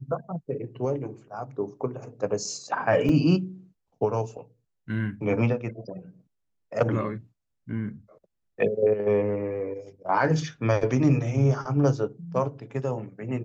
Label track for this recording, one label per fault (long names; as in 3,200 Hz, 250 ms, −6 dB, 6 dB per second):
3.090000	3.090000	drop-out 2.1 ms